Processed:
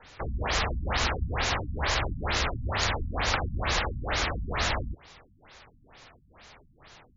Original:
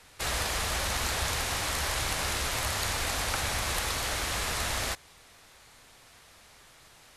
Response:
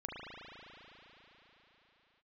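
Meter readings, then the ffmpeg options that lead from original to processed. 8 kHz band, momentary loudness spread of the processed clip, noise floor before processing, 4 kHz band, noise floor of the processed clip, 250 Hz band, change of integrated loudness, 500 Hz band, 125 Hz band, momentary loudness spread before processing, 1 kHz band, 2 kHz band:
-7.5 dB, 3 LU, -56 dBFS, -0.5 dB, -61 dBFS, +4.5 dB, +0.5 dB, +3.0 dB, +5.0 dB, 1 LU, +2.5 dB, +1.0 dB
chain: -af "afftfilt=real='re*lt(b*sr/1024,250*pow(7400/250,0.5+0.5*sin(2*PI*2.2*pts/sr)))':imag='im*lt(b*sr/1024,250*pow(7400/250,0.5+0.5*sin(2*PI*2.2*pts/sr)))':win_size=1024:overlap=0.75,volume=1.78"

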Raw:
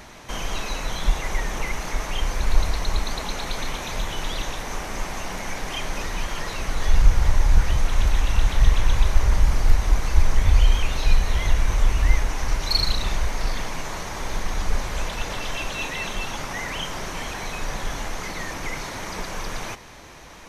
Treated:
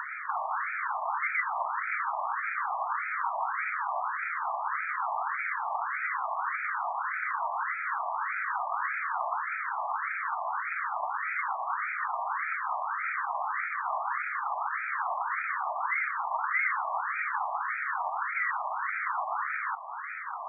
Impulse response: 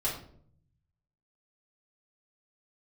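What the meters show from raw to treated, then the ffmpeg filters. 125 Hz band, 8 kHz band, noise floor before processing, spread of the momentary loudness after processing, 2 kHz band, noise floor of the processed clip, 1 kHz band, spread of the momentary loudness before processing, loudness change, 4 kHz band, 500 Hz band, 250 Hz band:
under -40 dB, under -40 dB, -37 dBFS, 3 LU, +1.5 dB, -36 dBFS, +4.5 dB, 10 LU, -5.0 dB, under -40 dB, -8.5 dB, under -40 dB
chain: -af "acompressor=mode=upward:threshold=0.0398:ratio=2.5,highpass=f=550:t=q:w=0.5412,highpass=f=550:t=q:w=1.307,lowpass=f=2200:t=q:w=0.5176,lowpass=f=2200:t=q:w=0.7071,lowpass=f=2200:t=q:w=1.932,afreqshift=97,afftfilt=real='re*between(b*sr/1024,840*pow(1800/840,0.5+0.5*sin(2*PI*1.7*pts/sr))/1.41,840*pow(1800/840,0.5+0.5*sin(2*PI*1.7*pts/sr))*1.41)':imag='im*between(b*sr/1024,840*pow(1800/840,0.5+0.5*sin(2*PI*1.7*pts/sr))/1.41,840*pow(1800/840,0.5+0.5*sin(2*PI*1.7*pts/sr))*1.41)':win_size=1024:overlap=0.75,volume=2.11"

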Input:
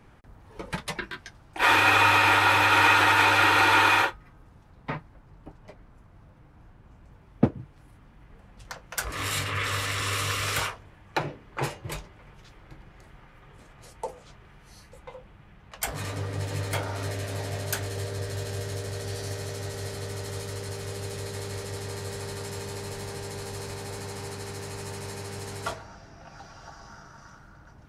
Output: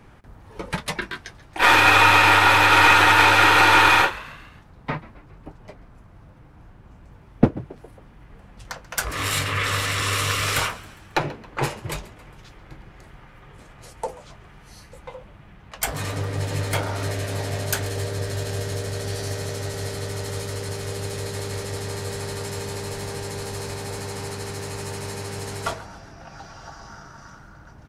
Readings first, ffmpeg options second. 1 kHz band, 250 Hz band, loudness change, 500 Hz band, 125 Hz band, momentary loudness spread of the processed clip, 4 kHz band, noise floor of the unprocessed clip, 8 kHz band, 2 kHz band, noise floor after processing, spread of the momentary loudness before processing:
+5.0 dB, +5.0 dB, +5.0 dB, +5.0 dB, +5.0 dB, 20 LU, +5.5 dB, -54 dBFS, +5.5 dB, +5.0 dB, -48 dBFS, 19 LU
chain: -filter_complex "[0:a]aeval=exprs='0.531*(cos(1*acos(clip(val(0)/0.531,-1,1)))-cos(1*PI/2))+0.0299*(cos(6*acos(clip(val(0)/0.531,-1,1)))-cos(6*PI/2))':c=same,asplit=5[s0][s1][s2][s3][s4];[s1]adelay=136,afreqshift=74,volume=0.1[s5];[s2]adelay=272,afreqshift=148,volume=0.0531[s6];[s3]adelay=408,afreqshift=222,volume=0.0282[s7];[s4]adelay=544,afreqshift=296,volume=0.015[s8];[s0][s5][s6][s7][s8]amix=inputs=5:normalize=0,volume=1.78"

